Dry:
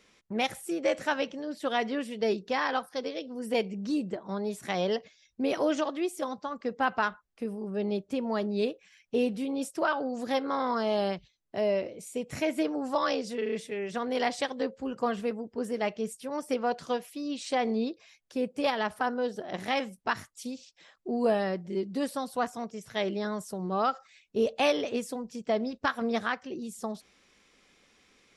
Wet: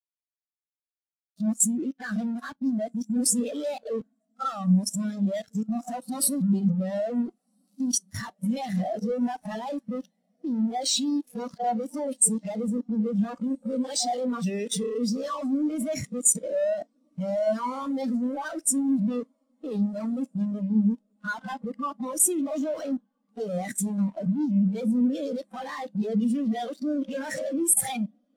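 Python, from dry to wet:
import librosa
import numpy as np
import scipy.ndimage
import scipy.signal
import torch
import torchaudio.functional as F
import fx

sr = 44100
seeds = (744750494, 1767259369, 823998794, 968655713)

y = np.flip(x).copy()
y = fx.peak_eq(y, sr, hz=380.0, db=-11.5, octaves=0.31)
y = fx.fuzz(y, sr, gain_db=52.0, gate_db=-47.0)
y = fx.level_steps(y, sr, step_db=10)
y = fx.high_shelf(y, sr, hz=3200.0, db=9.5)
y = fx.rev_schroeder(y, sr, rt60_s=0.38, comb_ms=33, drr_db=14.0)
y = fx.power_curve(y, sr, exponent=1.4)
y = fx.echo_diffused(y, sr, ms=1498, feedback_pct=58, wet_db=-16.0)
y = fx.spectral_expand(y, sr, expansion=2.5)
y = y * 10.0 ** (-6.5 / 20.0)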